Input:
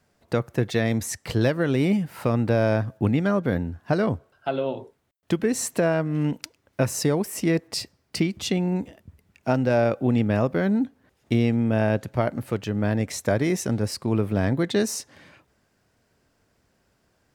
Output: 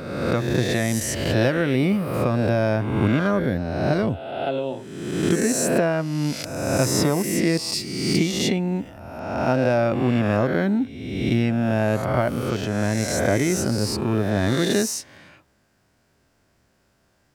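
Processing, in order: reverse spectral sustain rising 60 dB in 1.31 s; 3.40–4.71 s: peaking EQ 1.1 kHz -6.5 dB 1 oct; band-stop 460 Hz, Q 12; 1.61–2.14 s: peaking EQ 6.8 kHz -11 dB 0.37 oct

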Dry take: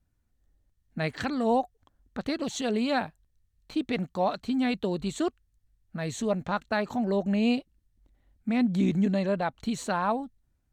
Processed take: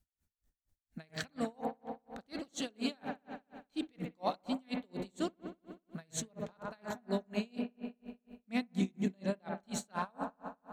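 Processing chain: treble shelf 3.3 kHz +11 dB; feedback echo behind a low-pass 62 ms, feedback 84%, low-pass 1.7 kHz, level -8 dB; logarithmic tremolo 4.2 Hz, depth 37 dB; trim -5.5 dB

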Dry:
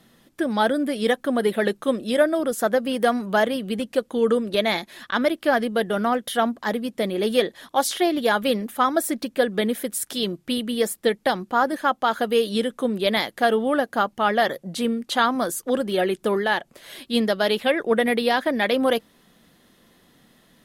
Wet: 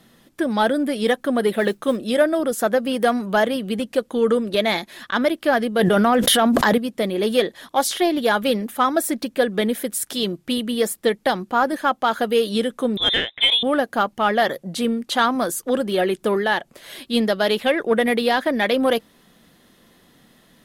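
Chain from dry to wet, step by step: 1.56–1.97 s: modulation noise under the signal 33 dB; 12.97–13.63 s: frequency inversion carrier 3.8 kHz; in parallel at -9 dB: saturation -19.5 dBFS, distortion -11 dB; 5.79–6.78 s: on the sum: level flattener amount 100%

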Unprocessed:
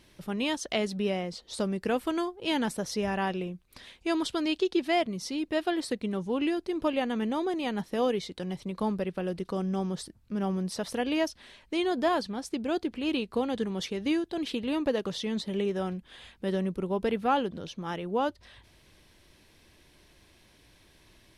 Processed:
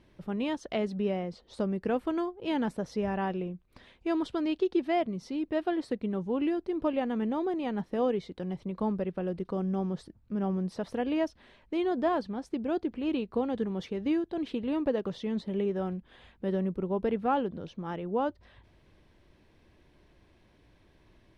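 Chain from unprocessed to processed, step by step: low-pass 1.1 kHz 6 dB/octave

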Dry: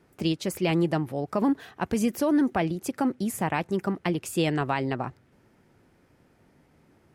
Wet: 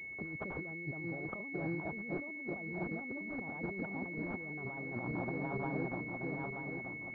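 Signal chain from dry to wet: backward echo that repeats 465 ms, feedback 68%, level -8.5 dB; compressor with a negative ratio -35 dBFS, ratio -1; class-D stage that switches slowly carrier 2.2 kHz; trim -7 dB

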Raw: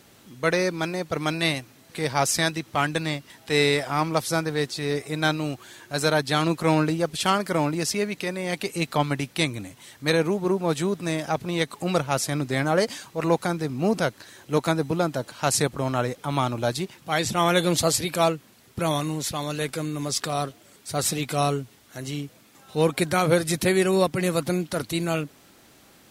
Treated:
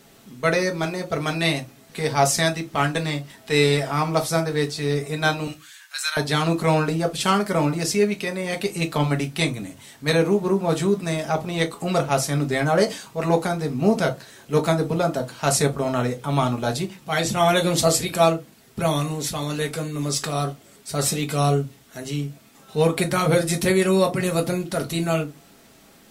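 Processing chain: 5.47–6.17 s: high-pass 1.4 kHz 24 dB/octave; on a send: reverberation RT60 0.20 s, pre-delay 4 ms, DRR 3 dB

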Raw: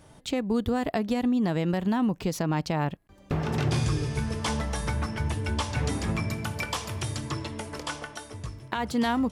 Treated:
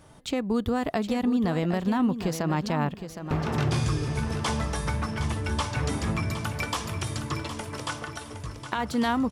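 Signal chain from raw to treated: peaking EQ 1.2 kHz +3.5 dB 0.5 oct; on a send: feedback delay 764 ms, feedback 26%, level -10 dB

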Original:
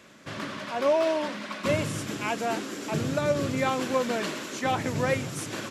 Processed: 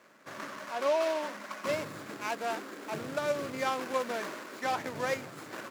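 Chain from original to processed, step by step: median filter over 15 samples; high-pass 850 Hz 6 dB/octave

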